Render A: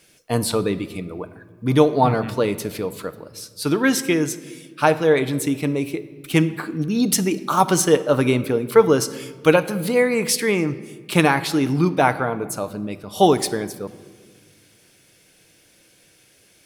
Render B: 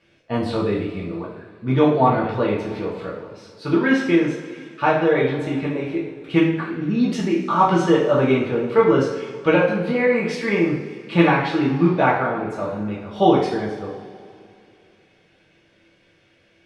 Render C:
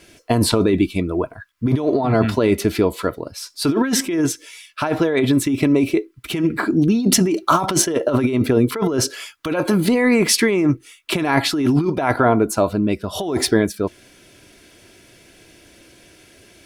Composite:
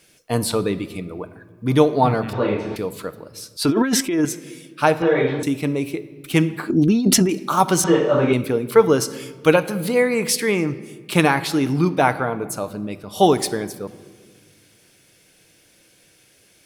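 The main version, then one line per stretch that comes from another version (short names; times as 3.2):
A
2.33–2.76 from B
3.57–4.25 from C
5.02–5.43 from B
6.7–7.29 from C
7.84–8.33 from B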